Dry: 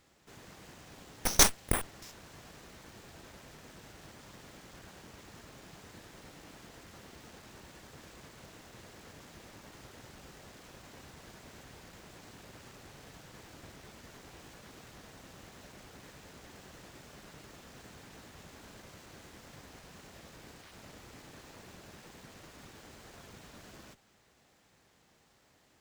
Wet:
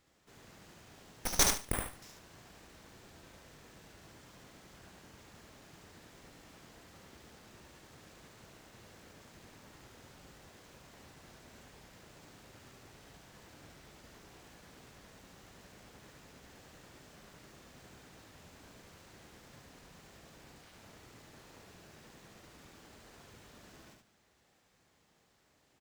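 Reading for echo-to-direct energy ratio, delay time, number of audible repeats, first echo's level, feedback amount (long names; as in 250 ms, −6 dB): −4.0 dB, 73 ms, 3, −4.0 dB, 22%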